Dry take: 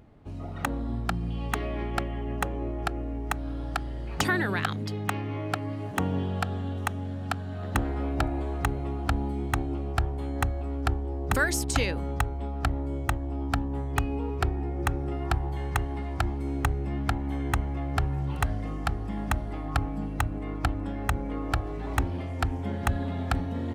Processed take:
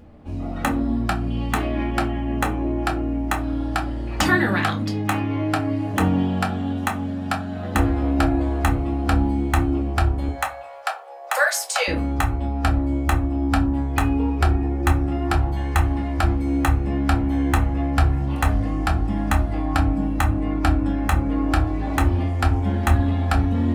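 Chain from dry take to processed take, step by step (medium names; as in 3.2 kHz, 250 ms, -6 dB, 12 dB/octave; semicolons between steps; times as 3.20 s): 10.28–11.88 s: steep high-pass 490 Hz 72 dB/octave; reverberation RT60 0.35 s, pre-delay 4 ms, DRR -1.5 dB; trim +3.5 dB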